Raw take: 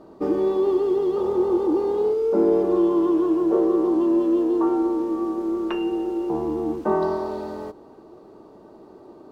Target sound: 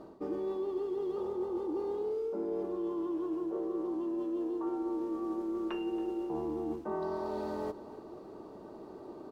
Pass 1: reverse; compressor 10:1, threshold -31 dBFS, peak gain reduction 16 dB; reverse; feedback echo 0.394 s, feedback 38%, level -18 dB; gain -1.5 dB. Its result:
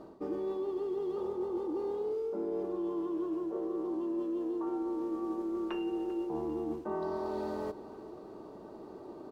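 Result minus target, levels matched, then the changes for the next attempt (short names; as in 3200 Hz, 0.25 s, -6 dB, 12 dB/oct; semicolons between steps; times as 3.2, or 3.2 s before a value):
echo 0.117 s late
change: feedback echo 0.277 s, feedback 38%, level -18 dB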